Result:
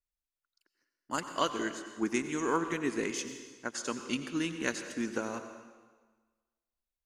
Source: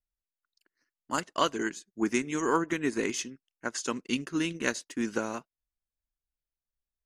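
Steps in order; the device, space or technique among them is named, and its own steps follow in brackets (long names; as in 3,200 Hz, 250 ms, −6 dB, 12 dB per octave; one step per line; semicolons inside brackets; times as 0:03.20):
saturated reverb return (on a send at −7.5 dB: convolution reverb RT60 1.4 s, pre-delay 84 ms + soft clipping −23 dBFS, distortion −17 dB)
on the sum: level −3.5 dB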